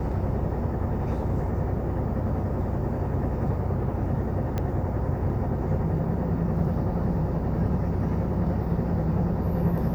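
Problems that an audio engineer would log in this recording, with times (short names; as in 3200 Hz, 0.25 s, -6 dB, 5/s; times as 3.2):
4.58 pop -16 dBFS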